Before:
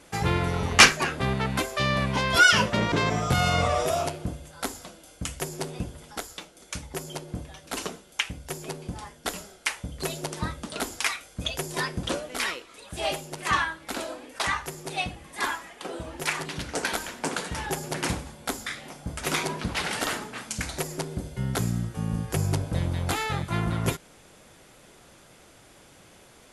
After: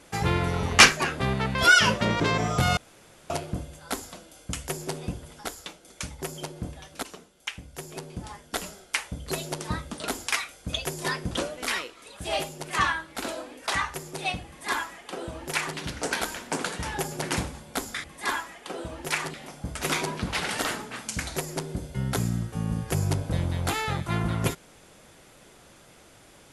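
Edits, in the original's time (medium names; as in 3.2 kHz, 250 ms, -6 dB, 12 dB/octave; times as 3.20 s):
1.55–2.27 s: delete
3.49–4.02 s: room tone
7.75–9.21 s: fade in, from -13 dB
15.19–16.49 s: copy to 18.76 s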